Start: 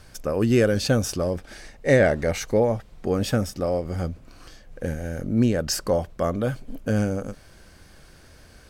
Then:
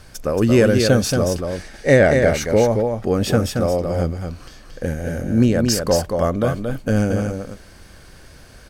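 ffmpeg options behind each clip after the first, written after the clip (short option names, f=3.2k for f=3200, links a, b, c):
-af "aecho=1:1:227:0.562,volume=4.5dB"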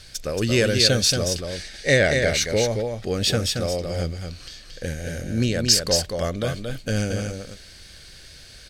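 -af "equalizer=f=250:t=o:w=1:g=-5,equalizer=f=1k:t=o:w=1:g=-8,equalizer=f=2k:t=o:w=1:g=4,equalizer=f=4k:t=o:w=1:g=12,equalizer=f=8k:t=o:w=1:g=5,volume=-4dB"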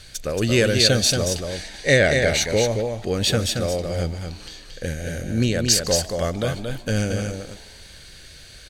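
-filter_complex "[0:a]bandreject=f=5.2k:w=7.7,asplit=5[a][b][c][d][e];[b]adelay=149,afreqshift=110,volume=-22dB[f];[c]adelay=298,afreqshift=220,volume=-27.4dB[g];[d]adelay=447,afreqshift=330,volume=-32.7dB[h];[e]adelay=596,afreqshift=440,volume=-38.1dB[i];[a][f][g][h][i]amix=inputs=5:normalize=0,volume=1.5dB"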